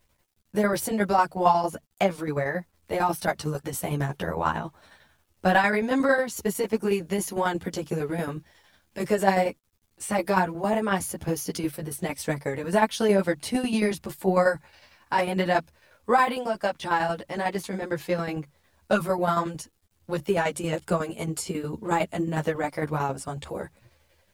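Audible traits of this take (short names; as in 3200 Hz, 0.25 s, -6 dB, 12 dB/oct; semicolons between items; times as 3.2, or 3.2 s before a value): tremolo saw down 11 Hz, depth 65%; a quantiser's noise floor 12-bit, dither none; a shimmering, thickened sound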